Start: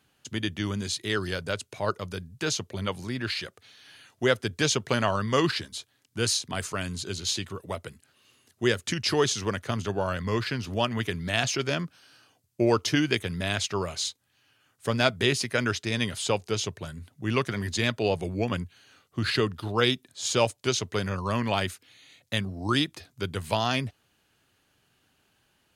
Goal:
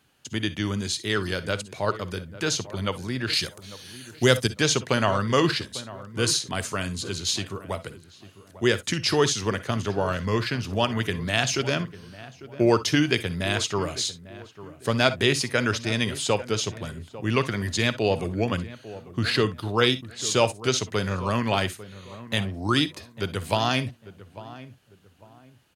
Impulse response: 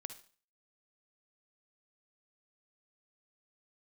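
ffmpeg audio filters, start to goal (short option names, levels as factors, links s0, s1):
-filter_complex "[0:a]asettb=1/sr,asplit=3[s0][s1][s2];[s0]atrim=end=3.334[s3];[s1]atrim=start=3.33:end=4.47,asetpts=PTS-STARTPTS,afade=t=in:d=0.004:c=qsin,afade=t=out:st=1.136:d=0.004:c=qsin,bass=f=250:g=7,treble=f=4000:g=13[s4];[s2]atrim=start=4.466[s5];[s3][s4]acrossfade=d=0.004:c1=hsin:c2=qsin[s6];[s6][s5]acrossfade=d=0.004:c1=qsin:c2=hsin,asplit=2[s7][s8];[s8]adelay=848,lowpass=f=1300:p=1,volume=0.168,asplit=2[s9][s10];[s10]adelay=848,lowpass=f=1300:p=1,volume=0.32,asplit=2[s11][s12];[s12]adelay=848,lowpass=f=1300:p=1,volume=0.32[s13];[s7][s9][s11][s13]amix=inputs=4:normalize=0,asplit=2[s14][s15];[1:a]atrim=start_sample=2205,atrim=end_sample=3087[s16];[s15][s16]afir=irnorm=-1:irlink=0,volume=2.99[s17];[s14][s17]amix=inputs=2:normalize=0,volume=0.473"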